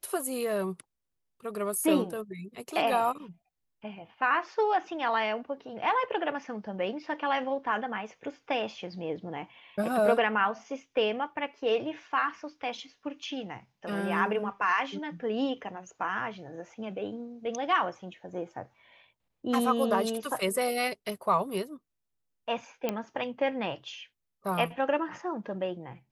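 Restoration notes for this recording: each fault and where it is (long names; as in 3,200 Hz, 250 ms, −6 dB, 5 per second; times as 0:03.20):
0:22.89: click −15 dBFS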